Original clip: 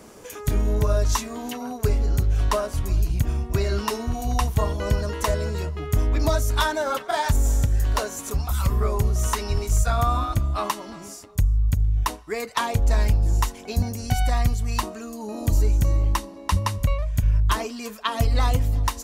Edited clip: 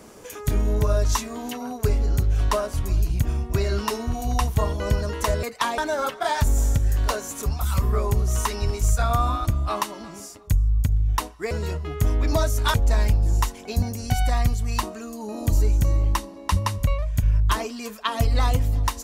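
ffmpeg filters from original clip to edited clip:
-filter_complex "[0:a]asplit=5[a][b][c][d][e];[a]atrim=end=5.432[f];[b]atrim=start=12.388:end=12.742[g];[c]atrim=start=6.658:end=12.392[h];[d]atrim=start=5.428:end=6.662[i];[e]atrim=start=12.738[j];[f][g]acrossfade=d=0.004:c1=hsin:c2=hsin[k];[k][h]acrossfade=d=0.004:c1=hsin:c2=hsin[l];[l][i]acrossfade=d=0.004:c1=hsin:c2=hsin[m];[m][j]acrossfade=d=0.004:c1=hsin:c2=hsin"

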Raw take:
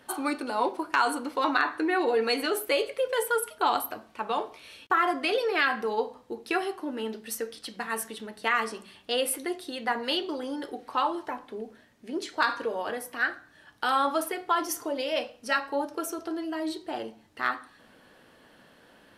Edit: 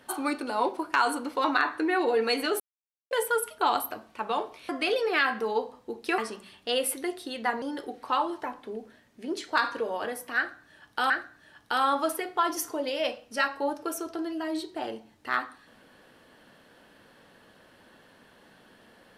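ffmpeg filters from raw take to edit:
-filter_complex "[0:a]asplit=7[a][b][c][d][e][f][g];[a]atrim=end=2.6,asetpts=PTS-STARTPTS,afade=t=out:st=2.596:d=0.004:c=hsin[h];[b]atrim=start=2.6:end=3.11,asetpts=PTS-STARTPTS,volume=0[i];[c]atrim=start=3.11:end=4.692,asetpts=PTS-STARTPTS,afade=t=in:d=0.004:c=hsin[j];[d]atrim=start=5.108:end=6.602[k];[e]atrim=start=8.598:end=10.042[l];[f]atrim=start=10.468:end=13.952[m];[g]atrim=start=13.218[n];[h][i][j]concat=n=3:v=0:a=1[o];[o][k]acrossfade=d=0.004:c1=hsin:c2=hsin[p];[p][l]acrossfade=d=0.004:c1=hsin:c2=hsin[q];[q][m]acrossfade=d=0.004:c1=hsin:c2=hsin[r];[r][n]acrossfade=d=0.004:c1=hsin:c2=hsin"

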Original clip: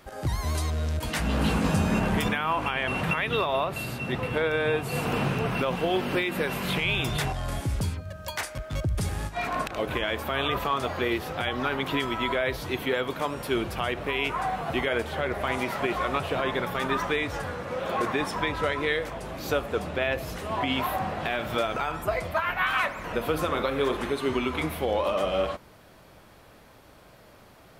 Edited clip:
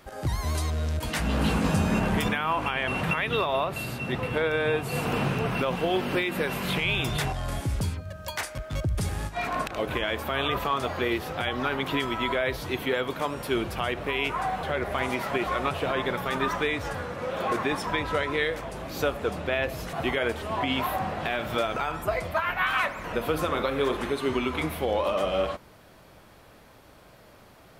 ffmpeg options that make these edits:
-filter_complex "[0:a]asplit=4[a][b][c][d];[a]atrim=end=14.632[e];[b]atrim=start=15.118:end=20.422[f];[c]atrim=start=14.628:end=15.122[g];[d]atrim=start=20.418[h];[e][f]acrossfade=d=0.004:c1=hsin:c2=hsin[i];[i][g]acrossfade=d=0.004:c1=hsin:c2=hsin[j];[j][h]acrossfade=d=0.004:c1=hsin:c2=hsin"

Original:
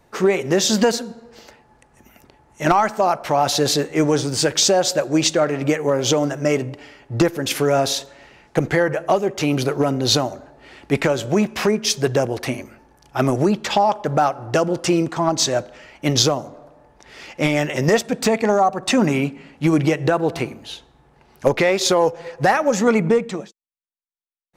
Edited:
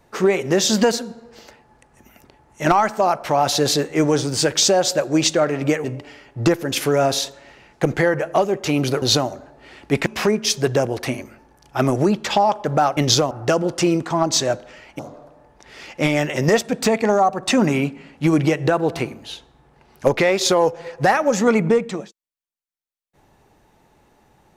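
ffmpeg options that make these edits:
-filter_complex "[0:a]asplit=7[a][b][c][d][e][f][g];[a]atrim=end=5.842[h];[b]atrim=start=6.578:end=9.762[i];[c]atrim=start=10.018:end=11.062[j];[d]atrim=start=11.458:end=14.372[k];[e]atrim=start=16.048:end=16.392[l];[f]atrim=start=14.368:end=16.052[m];[g]atrim=start=16.388[n];[h][i]acrossfade=d=0.004:c1=hsin:c2=hsin[o];[o][j]acrossfade=d=0.004:c1=hsin:c2=hsin[p];[p][k]acrossfade=d=0.004:c1=hsin:c2=hsin[q];[q][l]acrossfade=d=0.004:c1=hsin:c2=hsin[r];[r][m]acrossfade=d=0.004:c1=hsin:c2=hsin[s];[s][n]acrossfade=d=0.004:c1=hsin:c2=hsin"

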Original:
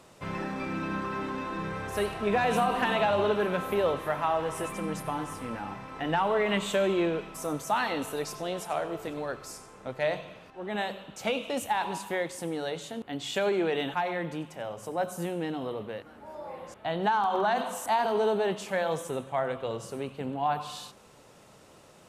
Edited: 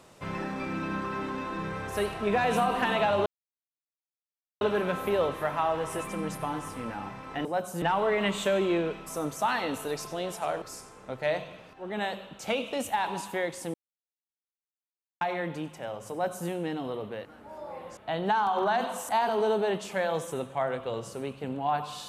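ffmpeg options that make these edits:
-filter_complex "[0:a]asplit=7[a][b][c][d][e][f][g];[a]atrim=end=3.26,asetpts=PTS-STARTPTS,afade=t=out:st=3.256:d=0.004:c=hsin,apad=pad_dur=1.35[h];[b]atrim=start=3.26:end=6.102,asetpts=PTS-STARTPTS,afade=t=in:d=0.004:c=hsin[i];[c]atrim=start=14.888:end=15.262[j];[d]atrim=start=6.098:end=8.902[k];[e]atrim=start=9.388:end=12.51,asetpts=PTS-STARTPTS,afade=t=out:st=3.118:d=0.004:c=hsin[l];[f]atrim=start=12.51:end=13.98,asetpts=PTS-STARTPTS,volume=0[m];[g]atrim=start=13.98,asetpts=PTS-STARTPTS,afade=t=in:d=0.004:c=hsin[n];[h][i]concat=n=2:v=0:a=1[o];[o][j]acrossfade=d=0.004:c1=hsin:c2=hsin[p];[p][k]acrossfade=d=0.004:c1=hsin:c2=hsin[q];[l][m][n]concat=n=3:v=0:a=1[r];[q][r]acrossfade=d=0.004:c1=hsin:c2=hsin"

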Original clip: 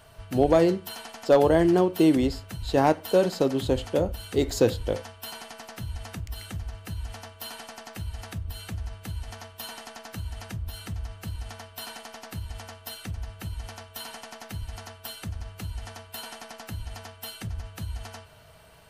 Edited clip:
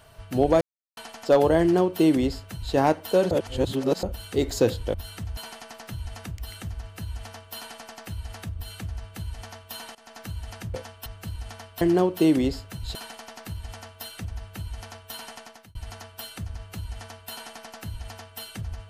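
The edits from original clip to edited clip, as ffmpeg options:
-filter_complex "[0:a]asplit=13[a][b][c][d][e][f][g][h][i][j][k][l][m];[a]atrim=end=0.61,asetpts=PTS-STARTPTS,afade=t=out:st=0.606:d=0.004:c=hsin[n];[b]atrim=start=0.61:end=0.97,asetpts=PTS-STARTPTS,volume=0[o];[c]atrim=start=0.97:end=3.312,asetpts=PTS-STARTPTS,afade=t=in:d=0.004:c=hsin[p];[d]atrim=start=3.308:end=4.032,asetpts=PTS-STARTPTS,areverse[q];[e]atrim=start=4.028:end=4.942[r];[f]atrim=start=10.628:end=11.062[s];[g]atrim=start=5.258:end=9.84,asetpts=PTS-STARTPTS,afade=t=out:st=4.578:d=0.004:c=hsin:silence=0.105925[t];[h]atrim=start=9.84:end=10.632,asetpts=PTS-STARTPTS,afade=t=in:d=0.25:silence=0.105925[u];[i]atrim=start=4.938:end=5.262[v];[j]atrim=start=11.058:end=11.812[w];[k]atrim=start=1.598:end=2.742[x];[l]atrim=start=11.808:end=14.61,asetpts=PTS-STARTPTS,afade=t=out:st=2.422:d=0.38[y];[m]atrim=start=14.61,asetpts=PTS-STARTPTS,afade=t=in:d=0.004:c=hsin[z];[n][o][p]concat=n=3:v=0:a=1[aa];[aa][q]acrossfade=d=0.004:c1=hsin:c2=hsin[ab];[ab][r]acrossfade=d=0.004:c1=hsin:c2=hsin[ac];[ac][s]acrossfade=d=0.004:c1=hsin:c2=hsin[ad];[t][u]concat=n=2:v=0:a=1[ae];[ad][ae]acrossfade=d=0.004:c1=hsin:c2=hsin[af];[af][v]acrossfade=d=0.004:c1=hsin:c2=hsin[ag];[ag][w]acrossfade=d=0.004:c1=hsin:c2=hsin[ah];[ah][x]acrossfade=d=0.004:c1=hsin:c2=hsin[ai];[y][z]concat=n=2:v=0:a=1[aj];[ai][aj]acrossfade=d=0.004:c1=hsin:c2=hsin"

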